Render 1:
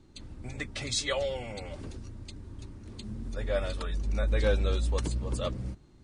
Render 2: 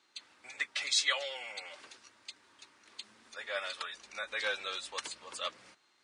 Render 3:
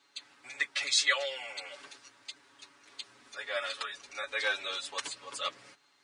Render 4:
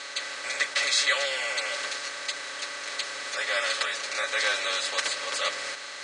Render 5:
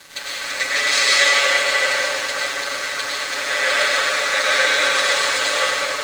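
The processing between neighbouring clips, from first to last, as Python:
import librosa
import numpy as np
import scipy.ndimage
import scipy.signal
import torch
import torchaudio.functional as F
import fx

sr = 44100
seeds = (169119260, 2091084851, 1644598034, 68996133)

y1 = scipy.signal.sosfilt(scipy.signal.butter(2, 1400.0, 'highpass', fs=sr, output='sos'), x)
y1 = fx.high_shelf(y1, sr, hz=7600.0, db=-12.0)
y1 = F.gain(torch.from_numpy(y1), 5.5).numpy()
y2 = y1 + 0.93 * np.pad(y1, (int(7.1 * sr / 1000.0), 0))[:len(y1)]
y3 = fx.bin_compress(y2, sr, power=0.4)
y4 = fx.rev_plate(y3, sr, seeds[0], rt60_s=4.9, hf_ratio=0.5, predelay_ms=85, drr_db=-8.5)
y4 = np.sign(y4) * np.maximum(np.abs(y4) - 10.0 ** (-38.0 / 20.0), 0.0)
y4 = F.gain(torch.from_numpy(y4), 3.0).numpy()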